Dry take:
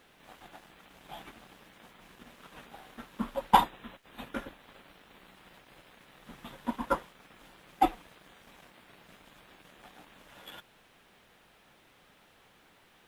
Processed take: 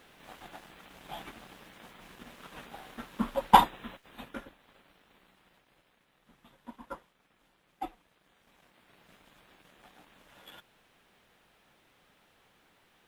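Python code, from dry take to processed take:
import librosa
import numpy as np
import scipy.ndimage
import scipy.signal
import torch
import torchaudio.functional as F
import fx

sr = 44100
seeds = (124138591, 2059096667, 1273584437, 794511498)

y = fx.gain(x, sr, db=fx.line((3.91, 3.0), (4.51, -7.0), (5.12, -7.0), (6.09, -13.5), (8.07, -13.5), (9.1, -4.0)))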